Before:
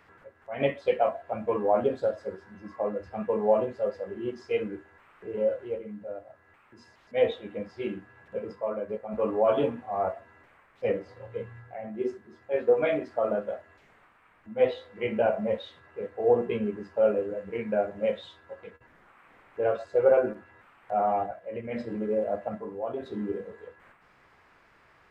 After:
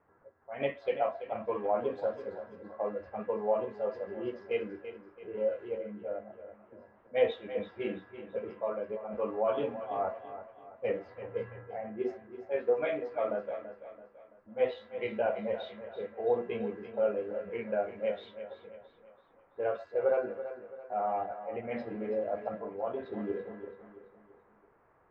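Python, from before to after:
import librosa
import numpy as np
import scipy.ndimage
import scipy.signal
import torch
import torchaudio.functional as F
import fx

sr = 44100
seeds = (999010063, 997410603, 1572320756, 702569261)

p1 = fx.env_lowpass(x, sr, base_hz=780.0, full_db=-25.0)
p2 = fx.low_shelf(p1, sr, hz=340.0, db=-8.0)
p3 = fx.rider(p2, sr, range_db=10, speed_s=0.5)
p4 = p2 + F.gain(torch.from_numpy(p3), -2.5).numpy()
p5 = fx.air_absorb(p4, sr, metres=140.0)
p6 = fx.echo_feedback(p5, sr, ms=334, feedback_pct=43, wet_db=-12.0)
y = F.gain(torch.from_numpy(p6), -7.5).numpy()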